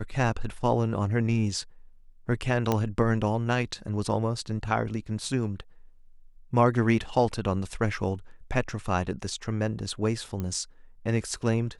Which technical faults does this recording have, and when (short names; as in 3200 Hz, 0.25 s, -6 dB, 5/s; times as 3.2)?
2.72 pop -11 dBFS
10.4 pop -20 dBFS